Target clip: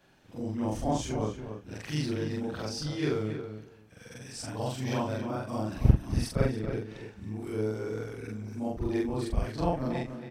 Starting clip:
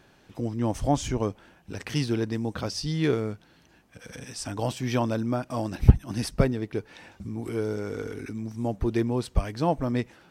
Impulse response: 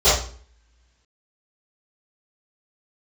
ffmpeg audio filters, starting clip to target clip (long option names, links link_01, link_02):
-filter_complex "[0:a]afftfilt=real='re':imag='-im':win_size=4096:overlap=0.75,asplit=2[link_01][link_02];[link_02]adelay=277,lowpass=frequency=2800:poles=1,volume=-8.5dB,asplit=2[link_03][link_04];[link_04]adelay=277,lowpass=frequency=2800:poles=1,volume=0.16[link_05];[link_01][link_03][link_05]amix=inputs=3:normalize=0"